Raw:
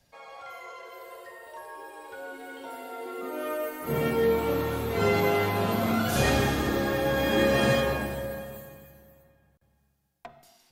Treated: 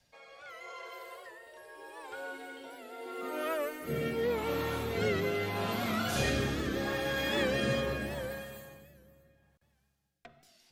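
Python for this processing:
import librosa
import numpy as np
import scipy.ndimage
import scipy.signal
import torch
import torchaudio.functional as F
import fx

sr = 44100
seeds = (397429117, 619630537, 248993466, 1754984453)

p1 = fx.tilt_shelf(x, sr, db=-4.0, hz=1400.0)
p2 = fx.rotary(p1, sr, hz=0.8)
p3 = fx.high_shelf(p2, sr, hz=8800.0, db=-10.5)
p4 = fx.rider(p3, sr, range_db=4, speed_s=0.5)
p5 = p3 + F.gain(torch.from_numpy(p4), -1.0).numpy()
p6 = fx.record_warp(p5, sr, rpm=78.0, depth_cents=100.0)
y = F.gain(torch.from_numpy(p6), -7.0).numpy()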